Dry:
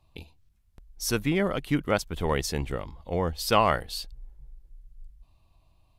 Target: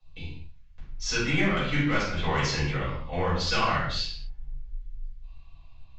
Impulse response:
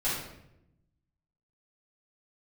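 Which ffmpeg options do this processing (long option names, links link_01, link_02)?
-filter_complex "[0:a]aeval=exprs='0.447*(cos(1*acos(clip(val(0)/0.447,-1,1)))-cos(1*PI/2))+0.0112*(cos(8*acos(clip(val(0)/0.447,-1,1)))-cos(8*PI/2))':channel_layout=same,equalizer=frequency=650:width_type=o:width=3:gain=-11.5,acrossover=split=740|3000[link_01][link_02][link_03];[link_02]dynaudnorm=framelen=180:gausssize=3:maxgain=8dB[link_04];[link_03]lowpass=5800[link_05];[link_01][link_04][link_05]amix=inputs=3:normalize=0,acrossover=split=90|270[link_06][link_07][link_08];[link_06]acompressor=threshold=-48dB:ratio=4[link_09];[link_07]acompressor=threshold=-41dB:ratio=4[link_10];[link_08]acompressor=threshold=-29dB:ratio=4[link_11];[link_09][link_10][link_11]amix=inputs=3:normalize=0,aresample=16000,asoftclip=type=tanh:threshold=-23dB,aresample=44100[link_12];[1:a]atrim=start_sample=2205,afade=type=out:start_time=0.31:duration=0.01,atrim=end_sample=14112[link_13];[link_12][link_13]afir=irnorm=-1:irlink=0"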